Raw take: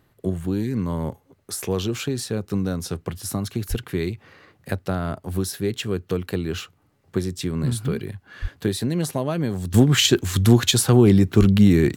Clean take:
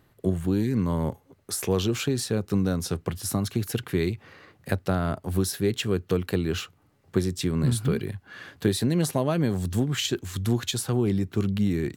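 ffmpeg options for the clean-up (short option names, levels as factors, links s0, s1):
-filter_complex "[0:a]asplit=3[s0][s1][s2];[s0]afade=t=out:st=3.69:d=0.02[s3];[s1]highpass=f=140:w=0.5412,highpass=f=140:w=1.3066,afade=t=in:st=3.69:d=0.02,afade=t=out:st=3.81:d=0.02[s4];[s2]afade=t=in:st=3.81:d=0.02[s5];[s3][s4][s5]amix=inputs=3:normalize=0,asplit=3[s6][s7][s8];[s6]afade=t=out:st=8.41:d=0.02[s9];[s7]highpass=f=140:w=0.5412,highpass=f=140:w=1.3066,afade=t=in:st=8.41:d=0.02,afade=t=out:st=8.53:d=0.02[s10];[s8]afade=t=in:st=8.53:d=0.02[s11];[s9][s10][s11]amix=inputs=3:normalize=0,asplit=3[s12][s13][s14];[s12]afade=t=out:st=11.39:d=0.02[s15];[s13]highpass=f=140:w=0.5412,highpass=f=140:w=1.3066,afade=t=in:st=11.39:d=0.02,afade=t=out:st=11.51:d=0.02[s16];[s14]afade=t=in:st=11.51:d=0.02[s17];[s15][s16][s17]amix=inputs=3:normalize=0,asetnsamples=n=441:p=0,asendcmd='9.74 volume volume -10dB',volume=1"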